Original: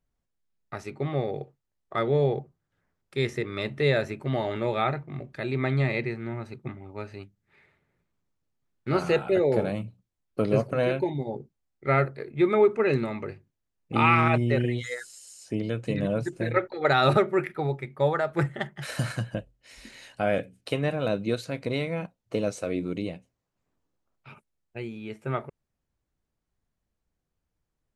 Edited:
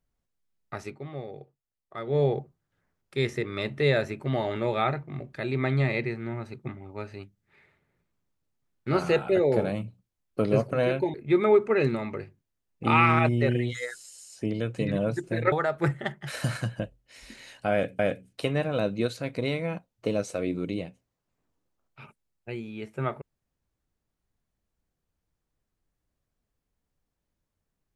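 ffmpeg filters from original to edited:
-filter_complex "[0:a]asplit=6[s0][s1][s2][s3][s4][s5];[s0]atrim=end=1,asetpts=PTS-STARTPTS,afade=t=out:st=0.87:d=0.13:silence=0.334965[s6];[s1]atrim=start=1:end=2.06,asetpts=PTS-STARTPTS,volume=0.335[s7];[s2]atrim=start=2.06:end=11.142,asetpts=PTS-STARTPTS,afade=t=in:d=0.13:silence=0.334965[s8];[s3]atrim=start=12.228:end=16.612[s9];[s4]atrim=start=18.068:end=20.542[s10];[s5]atrim=start=20.268[s11];[s6][s7][s8]concat=n=3:v=0:a=1[s12];[s12][s9]acrossfade=d=0.004:c1=hsin:c2=hsin[s13];[s13][s10]acrossfade=d=0.004:c1=hsin:c2=hsin[s14];[s14][s11]acrossfade=d=0.004:c1=hsin:c2=hsin"

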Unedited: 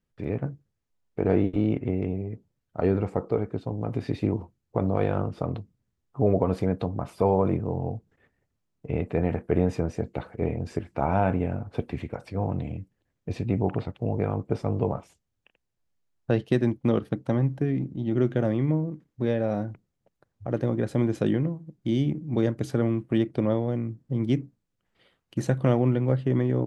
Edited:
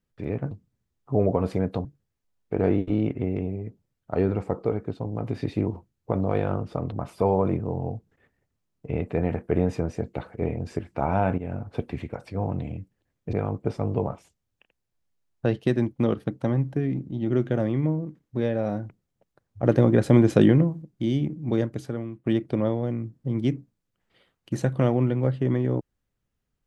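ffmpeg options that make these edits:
-filter_complex "[0:a]asplit=9[s0][s1][s2][s3][s4][s5][s6][s7][s8];[s0]atrim=end=0.512[s9];[s1]atrim=start=5.578:end=6.922[s10];[s2]atrim=start=0.508:end=5.582[s11];[s3]atrim=start=6.918:end=11.38,asetpts=PTS-STARTPTS,afade=t=out:st=4.458:d=0.004:c=hsin:silence=0.211349[s12];[s4]atrim=start=11.38:end=13.332,asetpts=PTS-STARTPTS,afade=t=in:d=0.26:c=qsin:silence=0.211349[s13];[s5]atrim=start=14.178:end=20.482[s14];[s6]atrim=start=20.478:end=21.672,asetpts=PTS-STARTPTS,volume=2.37[s15];[s7]atrim=start=21.668:end=23.11,asetpts=PTS-STARTPTS,afade=t=out:st=0.792:d=0.65:c=qua:silence=0.298538[s16];[s8]atrim=start=23.11,asetpts=PTS-STARTPTS,afade=t=in:d=0.004:c=hsin:silence=0.298538[s17];[s9][s10]acrossfade=d=0.004:c1=hsin:c2=hsin[s18];[s18][s11]acrossfade=d=0.004:c1=hsin:c2=hsin[s19];[s12][s13]concat=n=2:v=0:a=1[s20];[s19][s20]acrossfade=d=0.004:c1=hsin:c2=hsin[s21];[s21][s14]acrossfade=d=0.004:c1=hsin:c2=hsin[s22];[s22][s15]acrossfade=d=0.004:c1=hsin:c2=hsin[s23];[s16][s17]concat=n=2:v=0:a=1[s24];[s23][s24]acrossfade=d=0.004:c1=hsin:c2=hsin"

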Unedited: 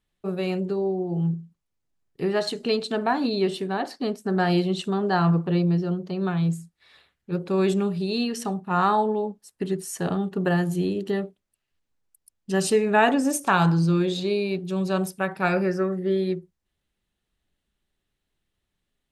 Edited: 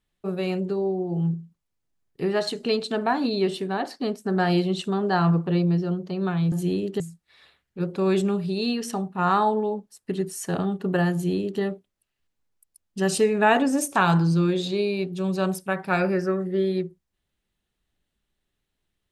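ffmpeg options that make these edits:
-filter_complex "[0:a]asplit=3[s0][s1][s2];[s0]atrim=end=6.522[s3];[s1]atrim=start=10.648:end=11.132[s4];[s2]atrim=start=6.518[s5];[s3][s4]acrossfade=d=0.004:c1=hsin:c2=hsin[s6];[s6][s5]acrossfade=d=0.004:c1=hsin:c2=hsin"

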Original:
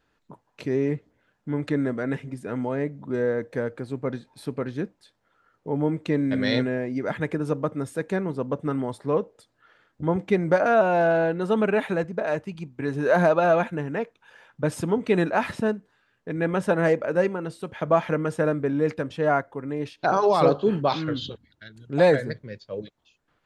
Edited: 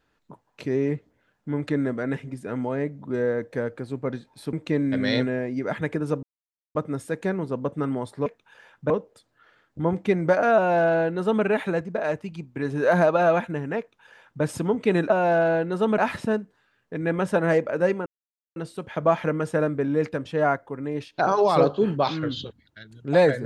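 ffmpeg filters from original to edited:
-filter_complex "[0:a]asplit=8[s0][s1][s2][s3][s4][s5][s6][s7];[s0]atrim=end=4.532[s8];[s1]atrim=start=5.918:end=7.62,asetpts=PTS-STARTPTS,afade=t=out:st=1.698:d=0.004:c=hsin,apad=pad_dur=0.52[s9];[s2]atrim=start=7.62:end=9.132,asetpts=PTS-STARTPTS,afade=t=in:d=0.004:c=hsin[s10];[s3]atrim=start=14.018:end=14.662[s11];[s4]atrim=start=9.128:end=15.332[s12];[s5]atrim=start=10.788:end=11.672[s13];[s6]atrim=start=15.328:end=17.41,asetpts=PTS-STARTPTS,afade=t=out:st=2.078:d=0.004:c=hsin,apad=pad_dur=0.5[s14];[s7]atrim=start=17.41,asetpts=PTS-STARTPTS,afade=t=in:d=0.004:c=hsin[s15];[s9][s10]concat=n=2:v=0:a=1[s16];[s8][s16]acrossfade=d=0.004:c1=hsin:c2=hsin[s17];[s17][s11]acrossfade=d=0.004:c1=hsin:c2=hsin[s18];[s18][s12]acrossfade=d=0.004:c1=hsin:c2=hsin[s19];[s19][s13]acrossfade=d=0.004:c1=hsin:c2=hsin[s20];[s14][s15]concat=n=2:v=0:a=1[s21];[s20][s21]acrossfade=d=0.004:c1=hsin:c2=hsin"

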